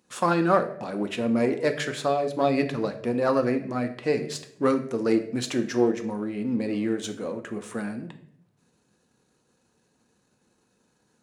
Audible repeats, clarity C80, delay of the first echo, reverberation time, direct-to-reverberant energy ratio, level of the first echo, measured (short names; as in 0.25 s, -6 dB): none, 14.5 dB, none, 0.70 s, 6.0 dB, none